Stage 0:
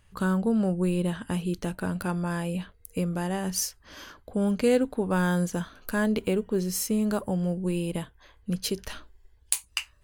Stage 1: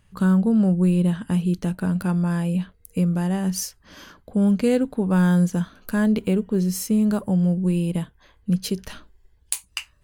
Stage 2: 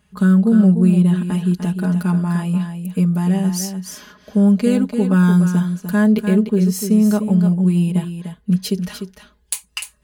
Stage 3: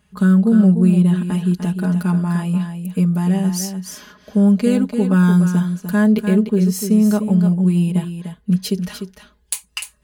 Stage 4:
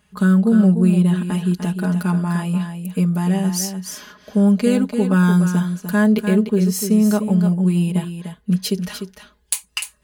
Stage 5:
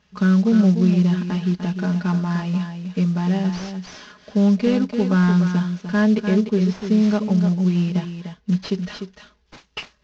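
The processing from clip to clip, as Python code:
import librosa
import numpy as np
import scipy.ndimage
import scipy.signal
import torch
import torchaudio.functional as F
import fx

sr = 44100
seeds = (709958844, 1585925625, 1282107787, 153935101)

y1 = fx.peak_eq(x, sr, hz=180.0, db=8.5, octaves=1.0)
y2 = scipy.signal.sosfilt(scipy.signal.butter(2, 59.0, 'highpass', fs=sr, output='sos'), y1)
y2 = y2 + 0.93 * np.pad(y2, (int(4.8 * sr / 1000.0), 0))[:len(y2)]
y2 = y2 + 10.0 ** (-8.5 / 20.0) * np.pad(y2, (int(298 * sr / 1000.0), 0))[:len(y2)]
y3 = y2
y4 = fx.low_shelf(y3, sr, hz=290.0, db=-5.0)
y4 = F.gain(torch.from_numpy(y4), 2.0).numpy()
y5 = fx.cvsd(y4, sr, bps=32000)
y5 = F.gain(torch.from_numpy(y5), -1.5).numpy()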